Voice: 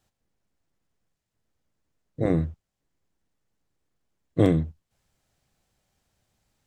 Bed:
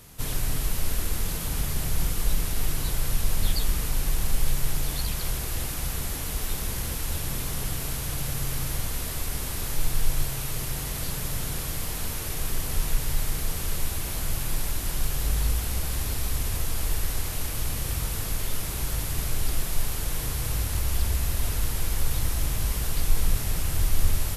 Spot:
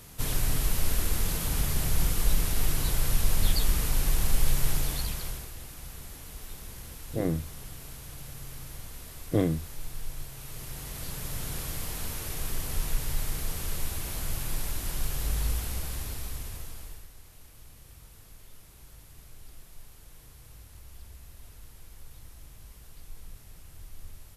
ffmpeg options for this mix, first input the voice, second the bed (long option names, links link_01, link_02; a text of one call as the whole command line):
ffmpeg -i stem1.wav -i stem2.wav -filter_complex "[0:a]adelay=4950,volume=-5.5dB[link_01];[1:a]volume=9dB,afade=type=out:start_time=4.72:duration=0.81:silence=0.223872,afade=type=in:start_time=10.32:duration=1.26:silence=0.354813,afade=type=out:start_time=15.54:duration=1.55:silence=0.11885[link_02];[link_01][link_02]amix=inputs=2:normalize=0" out.wav